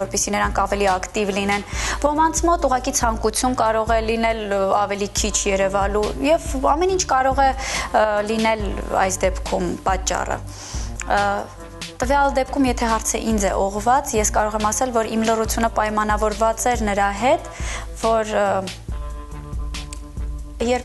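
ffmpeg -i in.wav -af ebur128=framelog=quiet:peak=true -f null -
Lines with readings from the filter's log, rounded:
Integrated loudness:
  I:         -20.0 LUFS
  Threshold: -30.4 LUFS
Loudness range:
  LRA:         3.4 LU
  Threshold: -40.2 LUFS
  LRA low:   -22.5 LUFS
  LRA high:  -19.1 LUFS
True peak:
  Peak:       -4.5 dBFS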